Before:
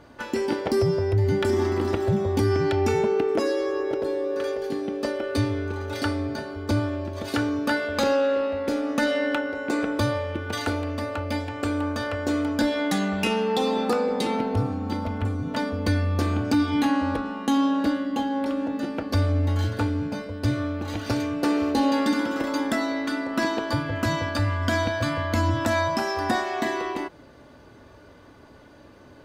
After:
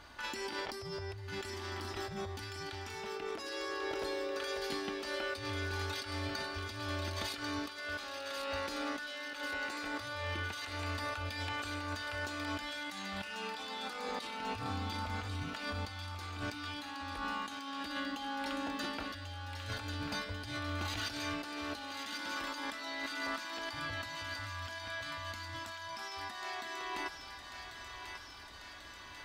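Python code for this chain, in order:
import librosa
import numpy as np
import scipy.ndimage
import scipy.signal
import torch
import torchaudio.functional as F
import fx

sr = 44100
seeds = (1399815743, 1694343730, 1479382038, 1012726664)

y = fx.graphic_eq(x, sr, hz=(125, 250, 500, 4000), db=(-12, -10, -12, 4))
y = fx.over_compress(y, sr, threshold_db=-38.0, ratio=-1.0)
y = fx.echo_thinned(y, sr, ms=1092, feedback_pct=72, hz=1200.0, wet_db=-5.0)
y = y * 10.0 ** (-3.5 / 20.0)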